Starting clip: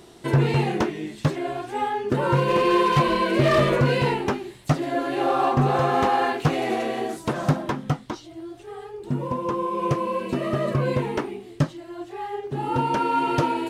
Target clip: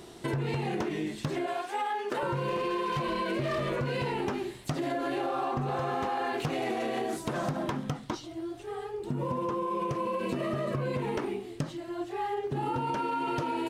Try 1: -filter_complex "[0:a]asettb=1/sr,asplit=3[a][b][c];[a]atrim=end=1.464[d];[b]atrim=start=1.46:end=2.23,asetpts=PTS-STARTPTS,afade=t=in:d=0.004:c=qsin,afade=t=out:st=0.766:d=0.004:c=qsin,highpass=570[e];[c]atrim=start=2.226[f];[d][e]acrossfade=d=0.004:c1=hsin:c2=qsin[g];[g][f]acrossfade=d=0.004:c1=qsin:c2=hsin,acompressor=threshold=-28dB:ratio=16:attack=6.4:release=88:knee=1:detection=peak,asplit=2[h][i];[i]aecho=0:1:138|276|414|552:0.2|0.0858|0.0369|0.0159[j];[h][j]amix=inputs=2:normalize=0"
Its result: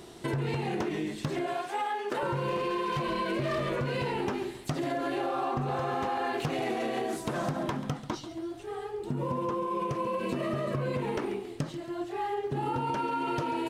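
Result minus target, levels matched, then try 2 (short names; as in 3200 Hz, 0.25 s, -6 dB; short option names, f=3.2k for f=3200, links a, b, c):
echo-to-direct +9.5 dB
-filter_complex "[0:a]asettb=1/sr,asplit=3[a][b][c];[a]atrim=end=1.464[d];[b]atrim=start=1.46:end=2.23,asetpts=PTS-STARTPTS,afade=t=in:d=0.004:c=qsin,afade=t=out:st=0.766:d=0.004:c=qsin,highpass=570[e];[c]atrim=start=2.226[f];[d][e]acrossfade=d=0.004:c1=hsin:c2=qsin[g];[g][f]acrossfade=d=0.004:c1=qsin:c2=hsin,acompressor=threshold=-28dB:ratio=16:attack=6.4:release=88:knee=1:detection=peak,asplit=2[h][i];[i]aecho=0:1:138|276|414:0.0668|0.0287|0.0124[j];[h][j]amix=inputs=2:normalize=0"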